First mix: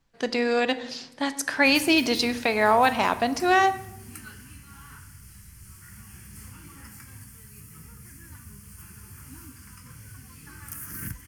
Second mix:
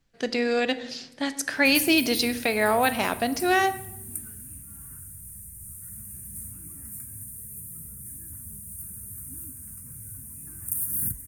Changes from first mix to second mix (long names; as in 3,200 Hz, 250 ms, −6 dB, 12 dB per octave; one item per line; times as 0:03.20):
background: add drawn EQ curve 190 Hz 0 dB, 2,600 Hz −14 dB, 3,800 Hz −29 dB, 9,300 Hz +11 dB
master: add parametric band 990 Hz −7.5 dB 0.67 octaves